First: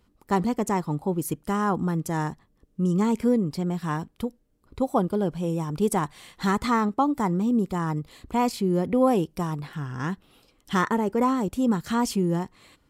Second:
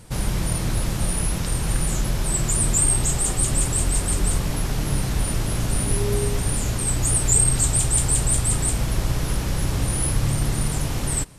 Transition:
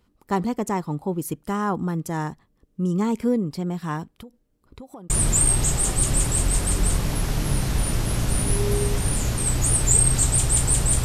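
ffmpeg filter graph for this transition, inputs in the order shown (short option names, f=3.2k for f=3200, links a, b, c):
-filter_complex "[0:a]asettb=1/sr,asplit=3[a][b][c];[a]atrim=end=4.174[d];[b]atrim=start=4.17:end=5.1,asetpts=PTS-STARTPTS,afade=t=in:d=0.004:c=qsin,afade=t=out:st=0.926:d=0.004:c=qsin,acompressor=threshold=-37dB:ratio=8:attack=3.2:release=140:knee=1:detection=peak[e];[c]atrim=start=5.096[f];[d][e]acrossfade=d=0.004:c1=hsin:c2=qsin[g];[g][f]acrossfade=d=0.004:c1=qsin:c2=hsin,apad=whole_dur=11.04,atrim=end=11.04,atrim=end=5.102[h];[1:a]atrim=start=2.508:end=8.45[i];[h][i]acrossfade=d=0.004:c1=hsin:c2=hsin"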